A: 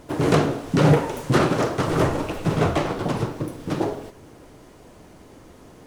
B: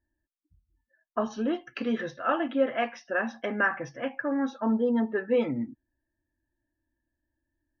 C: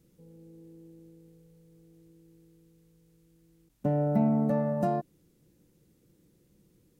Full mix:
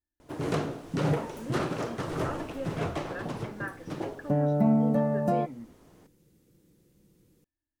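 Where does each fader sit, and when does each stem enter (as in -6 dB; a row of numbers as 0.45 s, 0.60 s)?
-11.0 dB, -12.5 dB, +1.5 dB; 0.20 s, 0.00 s, 0.45 s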